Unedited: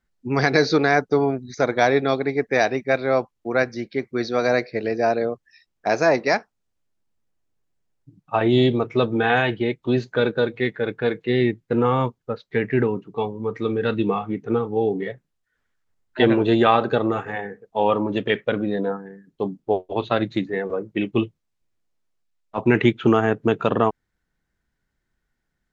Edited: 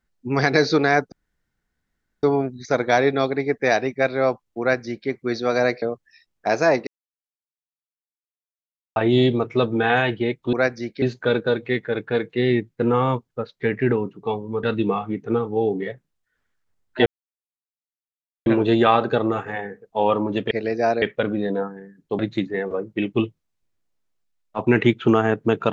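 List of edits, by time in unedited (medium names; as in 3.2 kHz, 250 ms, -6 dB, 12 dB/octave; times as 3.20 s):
1.12 s: insert room tone 1.11 s
3.49–3.98 s: copy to 9.93 s
4.71–5.22 s: move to 18.31 s
6.27–8.36 s: mute
13.54–13.83 s: delete
16.26 s: insert silence 1.40 s
19.48–20.18 s: delete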